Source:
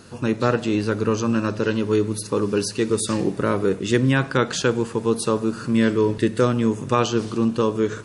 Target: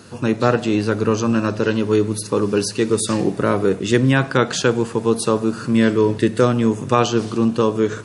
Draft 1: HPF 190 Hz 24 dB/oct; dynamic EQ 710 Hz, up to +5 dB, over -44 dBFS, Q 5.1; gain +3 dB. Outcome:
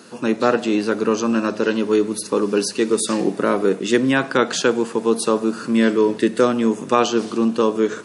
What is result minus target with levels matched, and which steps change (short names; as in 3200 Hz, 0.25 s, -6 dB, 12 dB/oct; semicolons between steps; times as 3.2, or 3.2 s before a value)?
125 Hz band -11.0 dB
change: HPF 67 Hz 24 dB/oct